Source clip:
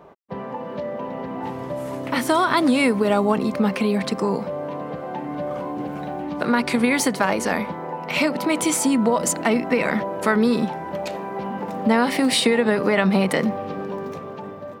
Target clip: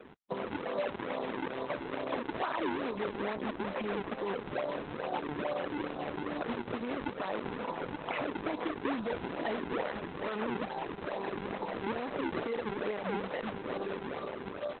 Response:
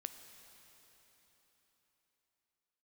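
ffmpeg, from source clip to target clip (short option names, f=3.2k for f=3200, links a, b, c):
-filter_complex "[0:a]adynamicsmooth=sensitivity=3:basefreq=1.2k,acrusher=samples=42:mix=1:aa=0.000001:lfo=1:lforange=67.2:lforate=2.3,asplit=2[a][b];[b]adelay=753,lowpass=f=1.9k:p=1,volume=-22dB,asplit=2[c][d];[d]adelay=753,lowpass=f=1.9k:p=1,volume=0.18[e];[a][c][e]amix=inputs=3:normalize=0,alimiter=limit=-15dB:level=0:latency=1:release=184,asoftclip=type=hard:threshold=-20.5dB,asettb=1/sr,asplit=3[f][g][h];[f]atrim=end=0.574[i];[g]atrim=start=0.57:end=3.02,asetpts=PTS-STARTPTS,afade=t=in:d=0.004:c=qsin,afade=t=out:st=2.446:d=0.004:c=qsin,lowshelf=f=94:g=-11[j];[h]atrim=start=3.016[k];[i][j]acrossfade=d=0.004:c1=hsin:c2=qsin[l];[l][k]acrossfade=d=0.004:c1=qsin:c2=hsin,acompressor=threshold=-31dB:ratio=4,highpass=73,bass=f=250:g=-13,treble=f=4k:g=-12,volume=2.5dB" -ar 48000 -c:a libopus -b:a 8k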